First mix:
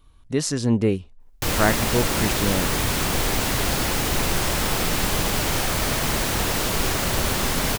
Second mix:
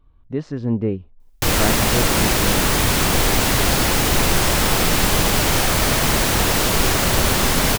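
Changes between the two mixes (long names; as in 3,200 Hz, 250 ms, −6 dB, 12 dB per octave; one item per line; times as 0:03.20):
speech: add head-to-tape spacing loss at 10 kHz 42 dB
background +5.5 dB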